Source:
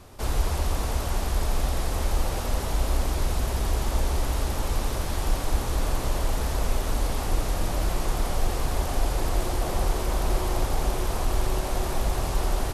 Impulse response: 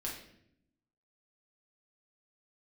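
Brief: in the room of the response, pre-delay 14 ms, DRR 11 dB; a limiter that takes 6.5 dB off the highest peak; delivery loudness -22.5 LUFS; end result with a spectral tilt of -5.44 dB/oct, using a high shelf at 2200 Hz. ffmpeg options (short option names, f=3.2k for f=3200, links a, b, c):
-filter_complex "[0:a]highshelf=f=2.2k:g=-4.5,alimiter=limit=-18dB:level=0:latency=1,asplit=2[a][b];[1:a]atrim=start_sample=2205,adelay=14[c];[b][c]afir=irnorm=-1:irlink=0,volume=-12dB[d];[a][d]amix=inputs=2:normalize=0,volume=7.5dB"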